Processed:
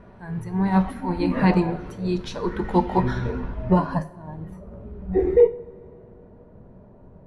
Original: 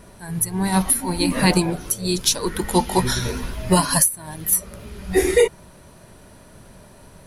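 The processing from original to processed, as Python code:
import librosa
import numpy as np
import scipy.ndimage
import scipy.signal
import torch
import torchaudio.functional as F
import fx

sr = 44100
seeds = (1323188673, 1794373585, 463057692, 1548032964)

y = fx.rev_double_slope(x, sr, seeds[0], early_s=0.44, late_s=3.5, knee_db=-19, drr_db=9.5)
y = fx.filter_sweep_lowpass(y, sr, from_hz=1700.0, to_hz=680.0, start_s=2.79, end_s=4.62, q=0.72)
y = y * 10.0 ** (-1.5 / 20.0)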